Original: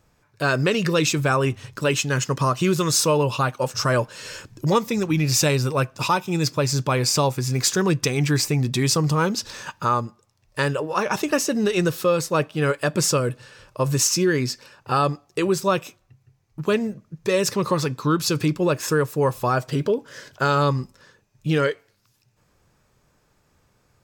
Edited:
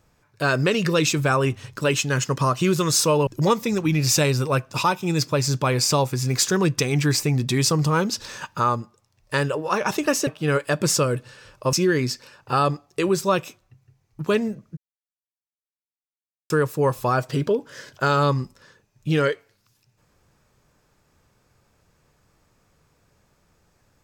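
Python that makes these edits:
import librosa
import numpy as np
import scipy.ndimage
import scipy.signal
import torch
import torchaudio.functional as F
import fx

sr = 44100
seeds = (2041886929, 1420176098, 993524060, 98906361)

y = fx.edit(x, sr, fx.cut(start_s=3.27, length_s=1.25),
    fx.cut(start_s=11.52, length_s=0.89),
    fx.cut(start_s=13.87, length_s=0.25),
    fx.silence(start_s=17.16, length_s=1.73), tone=tone)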